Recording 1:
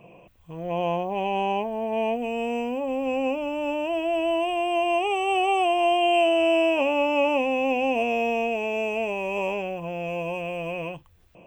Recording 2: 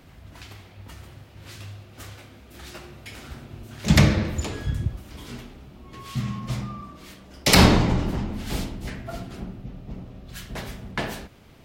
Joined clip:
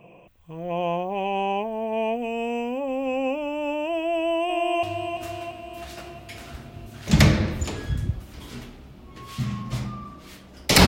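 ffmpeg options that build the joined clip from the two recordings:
-filter_complex "[0:a]apad=whole_dur=10.87,atrim=end=10.87,atrim=end=4.832[s0];[1:a]atrim=start=1.598:end=7.64[s1];[s0][s1]acrossfade=d=0.004:c1=hsin:c2=hsin,asplit=2[s2][s3];[s3]afade=t=in:st=4.15:d=0.01,afade=t=out:st=4.83:d=0.01,aecho=0:1:340|680|1020|1360|1700|2040|2380|2720:0.473151|0.283891|0.170334|0.102201|0.0613204|0.0367922|0.0220753|0.0132452[s4];[s2][s4]amix=inputs=2:normalize=0"

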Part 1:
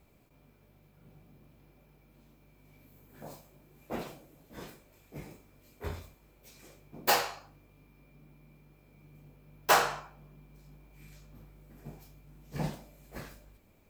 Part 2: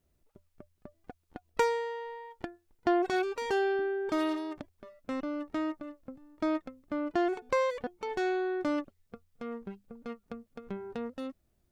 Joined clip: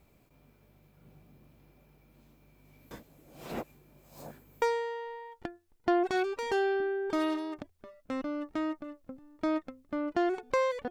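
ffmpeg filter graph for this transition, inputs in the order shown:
-filter_complex "[0:a]apad=whole_dur=10.9,atrim=end=10.9,asplit=2[s0][s1];[s0]atrim=end=2.912[s2];[s1]atrim=start=2.908:end=4.622,asetpts=PTS-STARTPTS,areverse[s3];[1:a]atrim=start=1.608:end=7.89[s4];[s2][s3]acrossfade=d=0.004:c1=hsin:c2=hsin[s5];[s5][s4]acrossfade=d=0.004:c1=hsin:c2=hsin"

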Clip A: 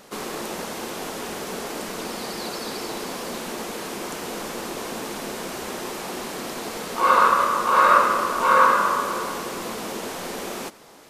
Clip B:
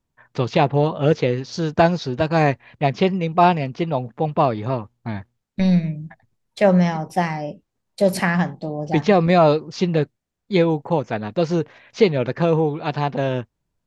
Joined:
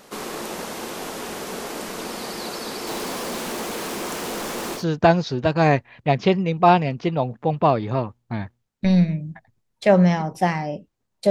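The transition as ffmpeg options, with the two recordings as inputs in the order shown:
-filter_complex "[0:a]asettb=1/sr,asplit=3[s0][s1][s2];[s0]atrim=end=2.874[s3];[s1]atrim=start=2.87:end=4.85,asetpts=PTS-STARTPTS,afade=t=in:d=0.004:c=qsin,afade=t=out:st=1.976:d=0.004:c=qsin,aeval=exprs='val(0)+0.5*0.0224*sgn(val(0))':c=same[s4];[s2]atrim=start=4.846[s5];[s3][s4]acrossfade=d=0.004:c1=hsin:c2=qsin[s6];[s6][s5]acrossfade=d=0.004:c1=qsin:c2=hsin,apad=whole_dur=11.3,atrim=end=11.3,atrim=end=4.85,asetpts=PTS-STARTPTS[s7];[1:a]atrim=start=1.48:end=8.05,asetpts=PTS-STARTPTS[s8];[s7][s8]acrossfade=d=0.12:c1=tri:c2=tri"

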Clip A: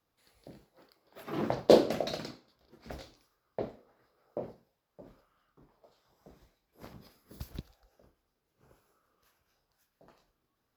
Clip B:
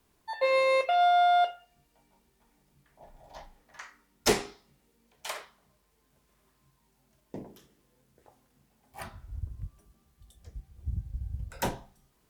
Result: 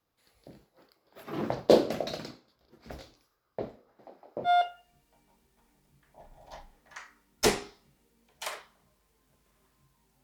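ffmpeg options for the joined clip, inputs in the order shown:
-filter_complex "[0:a]asplit=3[s0][s1][s2];[s0]afade=t=out:st=3.98:d=0.02[s3];[s1]asplit=9[s4][s5][s6][s7][s8][s9][s10][s11][s12];[s5]adelay=161,afreqshift=45,volume=0.473[s13];[s6]adelay=322,afreqshift=90,volume=0.285[s14];[s7]adelay=483,afreqshift=135,volume=0.17[s15];[s8]adelay=644,afreqshift=180,volume=0.102[s16];[s9]adelay=805,afreqshift=225,volume=0.0617[s17];[s10]adelay=966,afreqshift=270,volume=0.0367[s18];[s11]adelay=1127,afreqshift=315,volume=0.0221[s19];[s12]adelay=1288,afreqshift=360,volume=0.0132[s20];[s4][s13][s14][s15][s16][s17][s18][s19][s20]amix=inputs=9:normalize=0,afade=t=in:st=3.98:d=0.02,afade=t=out:st=4.5:d=0.02[s21];[s2]afade=t=in:st=4.5:d=0.02[s22];[s3][s21][s22]amix=inputs=3:normalize=0,apad=whole_dur=10.23,atrim=end=10.23,atrim=end=4.5,asetpts=PTS-STARTPTS[s23];[1:a]atrim=start=1.27:end=7.06,asetpts=PTS-STARTPTS[s24];[s23][s24]acrossfade=d=0.06:c1=tri:c2=tri"

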